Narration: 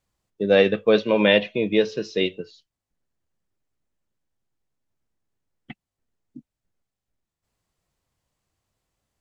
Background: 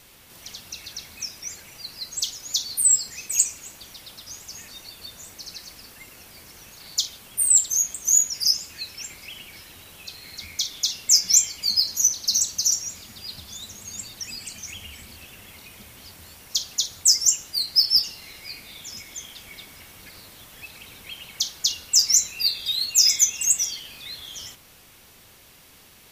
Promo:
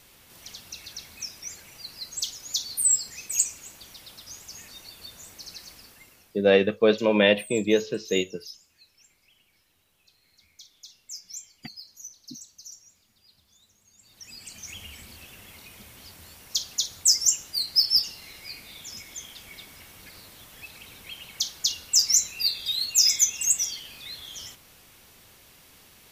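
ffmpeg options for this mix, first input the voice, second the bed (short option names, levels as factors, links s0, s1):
-filter_complex "[0:a]adelay=5950,volume=0.794[s0];[1:a]volume=7.08,afade=t=out:st=5.7:d=0.79:silence=0.105925,afade=t=in:st=14:d=0.78:silence=0.0944061[s1];[s0][s1]amix=inputs=2:normalize=0"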